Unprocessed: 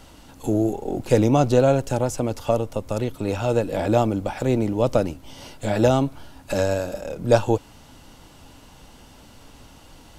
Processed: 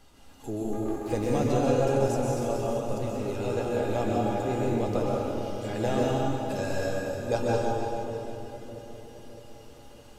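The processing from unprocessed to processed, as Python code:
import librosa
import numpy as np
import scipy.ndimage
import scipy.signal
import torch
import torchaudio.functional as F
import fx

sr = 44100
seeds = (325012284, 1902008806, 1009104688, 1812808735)

y = fx.lower_of_two(x, sr, delay_ms=3.4, at=(0.72, 1.13))
y = fx.comb_fb(y, sr, f0_hz=410.0, decay_s=0.23, harmonics='all', damping=0.0, mix_pct=80)
y = fx.echo_split(y, sr, split_hz=600.0, low_ms=612, high_ms=326, feedback_pct=52, wet_db=-10.0)
y = fx.rev_plate(y, sr, seeds[0], rt60_s=2.1, hf_ratio=0.75, predelay_ms=115, drr_db=-4.0)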